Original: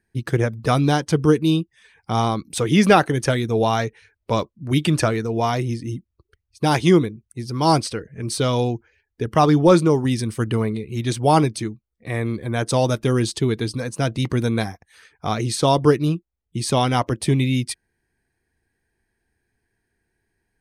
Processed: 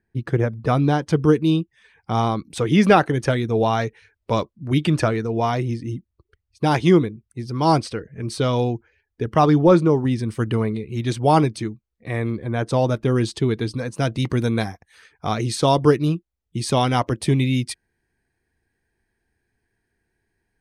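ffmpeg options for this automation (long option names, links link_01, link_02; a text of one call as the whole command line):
ffmpeg -i in.wav -af "asetnsamples=nb_out_samples=441:pad=0,asendcmd='1.02 lowpass f 3200;3.81 lowpass f 5900;4.57 lowpass f 3300;9.58 lowpass f 1800;10.28 lowpass f 4200;12.3 lowpass f 1900;13.16 lowpass f 3700;13.95 lowpass f 7800',lowpass=frequency=1600:poles=1" out.wav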